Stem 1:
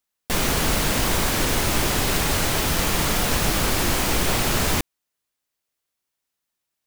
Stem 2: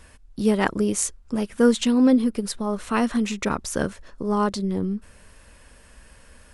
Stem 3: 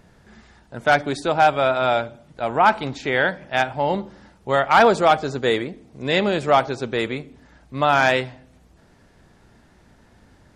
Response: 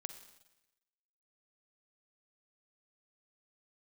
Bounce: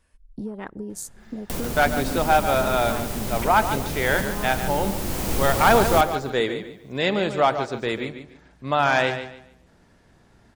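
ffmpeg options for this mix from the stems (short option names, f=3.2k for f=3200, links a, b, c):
-filter_complex "[0:a]highshelf=f=6.8k:g=8.5,acrossover=split=220|820[a][b][c];[a]acompressor=threshold=-25dB:ratio=4[d];[b]acompressor=threshold=-33dB:ratio=4[e];[c]acompressor=threshold=-34dB:ratio=4[f];[d][e][f]amix=inputs=3:normalize=0,adelay=1200,volume=1dB,asplit=3[g][h][i];[h]volume=-8.5dB[j];[i]volume=-10.5dB[k];[1:a]afwtdn=0.0355,acompressor=threshold=-30dB:ratio=8,volume=-1dB,asplit=3[l][m][n];[m]volume=-19.5dB[o];[2:a]adelay=900,volume=-3dB,asplit=2[p][q];[q]volume=-10dB[r];[n]apad=whole_len=355811[s];[g][s]sidechaincompress=threshold=-38dB:ratio=8:attack=16:release=737[t];[3:a]atrim=start_sample=2205[u];[j][o]amix=inputs=2:normalize=0[v];[v][u]afir=irnorm=-1:irlink=0[w];[k][r]amix=inputs=2:normalize=0,aecho=0:1:145|290|435|580:1|0.26|0.0676|0.0176[x];[t][l][p][w][x]amix=inputs=5:normalize=0"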